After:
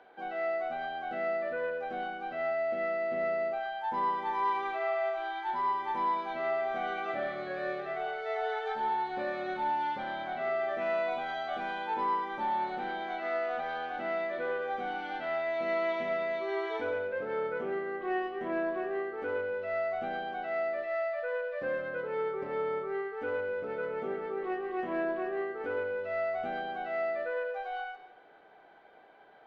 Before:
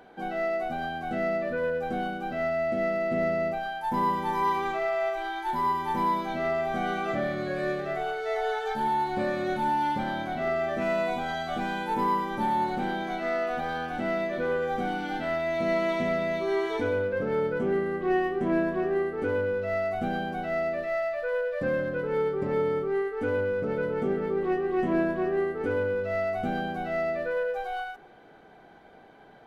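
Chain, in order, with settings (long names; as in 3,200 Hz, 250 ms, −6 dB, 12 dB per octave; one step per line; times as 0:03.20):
three-way crossover with the lows and the highs turned down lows −15 dB, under 380 Hz, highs −22 dB, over 4,500 Hz
convolution reverb RT60 0.60 s, pre-delay 95 ms, DRR 10.5 dB
level −3.5 dB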